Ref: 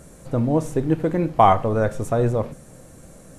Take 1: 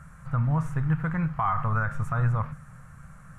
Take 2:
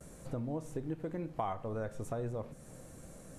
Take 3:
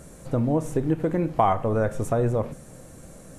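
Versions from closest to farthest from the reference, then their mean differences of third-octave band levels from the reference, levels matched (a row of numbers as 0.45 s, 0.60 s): 3, 2, 1; 2.0 dB, 5.0 dB, 7.5 dB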